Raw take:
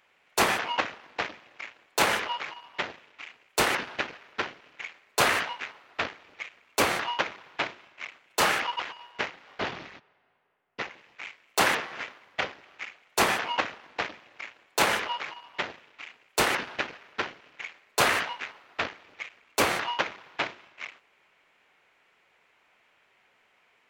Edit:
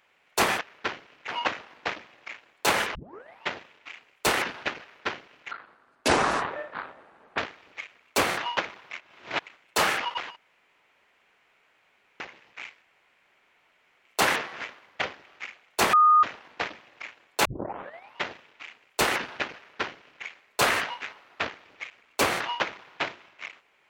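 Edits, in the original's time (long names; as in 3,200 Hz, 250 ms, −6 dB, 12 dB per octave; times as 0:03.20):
0:02.28: tape start 0.50 s
0:04.84–0:06.00: play speed 62%
0:07.52–0:08.08: reverse
0:08.98–0:10.82: fill with room tone
0:11.44: splice in room tone 1.23 s
0:13.32–0:13.62: beep over 1,230 Hz −14 dBFS
0:14.84: tape start 0.72 s
0:16.95–0:17.62: duplicate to 0:00.61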